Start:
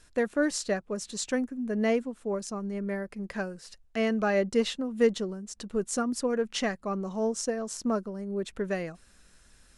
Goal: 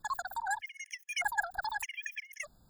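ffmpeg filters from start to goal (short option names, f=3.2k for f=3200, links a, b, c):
-af "asetrate=160083,aresample=44100,afftfilt=real='re*gt(sin(2*PI*0.82*pts/sr)*(1-2*mod(floor(b*sr/1024/1700),2)),0)':imag='im*gt(sin(2*PI*0.82*pts/sr)*(1-2*mod(floor(b*sr/1024/1700),2)),0)':win_size=1024:overlap=0.75,volume=-5dB"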